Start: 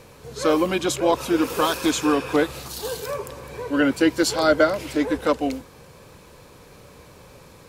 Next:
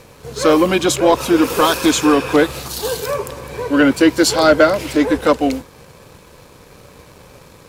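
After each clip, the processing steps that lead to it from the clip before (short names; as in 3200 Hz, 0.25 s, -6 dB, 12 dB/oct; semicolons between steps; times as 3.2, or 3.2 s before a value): sample leveller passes 1; gain +4 dB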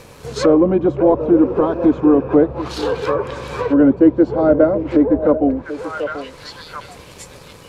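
delay with a stepping band-pass 0.736 s, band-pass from 480 Hz, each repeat 1.4 oct, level -10 dB; treble ducked by the level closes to 580 Hz, closed at -13 dBFS; gain +2 dB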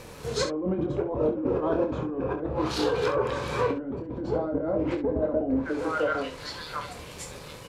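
negative-ratio compressor -20 dBFS, ratio -1; on a send: early reflections 26 ms -6 dB, 67 ms -9.5 dB; on the sum: gain -8.5 dB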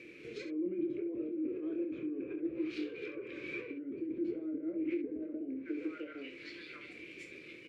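compressor, threshold -30 dBFS, peak gain reduction 9.5 dB; double band-pass 880 Hz, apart 2.8 oct; gain +3.5 dB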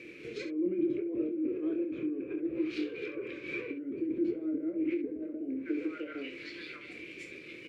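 noise-modulated level, depth 55%; gain +6.5 dB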